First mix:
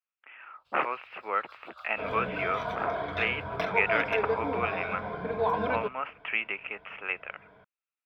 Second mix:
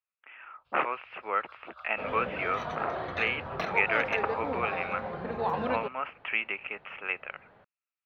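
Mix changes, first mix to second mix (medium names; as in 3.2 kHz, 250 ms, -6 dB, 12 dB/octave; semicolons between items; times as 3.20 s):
first sound: add tone controls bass +4 dB, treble -14 dB; second sound: remove rippled EQ curve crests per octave 1.7, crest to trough 12 dB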